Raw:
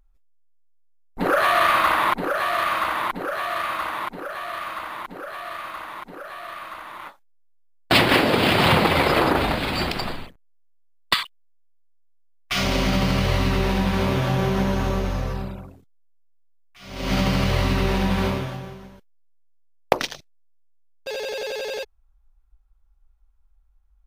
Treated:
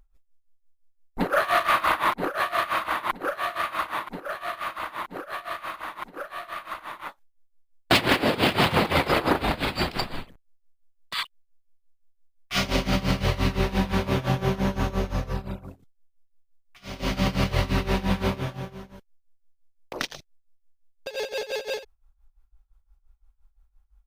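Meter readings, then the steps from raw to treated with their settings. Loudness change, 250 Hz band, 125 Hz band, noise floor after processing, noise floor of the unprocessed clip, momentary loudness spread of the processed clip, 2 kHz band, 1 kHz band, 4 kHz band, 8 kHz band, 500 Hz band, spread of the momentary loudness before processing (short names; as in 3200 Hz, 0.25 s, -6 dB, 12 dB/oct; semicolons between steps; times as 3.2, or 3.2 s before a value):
-4.0 dB, -3.5 dB, -3.5 dB, -69 dBFS, -59 dBFS, 15 LU, -3.5 dB, -3.5 dB, -4.0 dB, -3.0 dB, -3.5 dB, 18 LU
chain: in parallel at -2 dB: compressor 5:1, threshold -30 dBFS, peak gain reduction 17 dB; on the sum: hard clip -9 dBFS, distortion -22 dB; tremolo 5.8 Hz, depth 86%; gain -1.5 dB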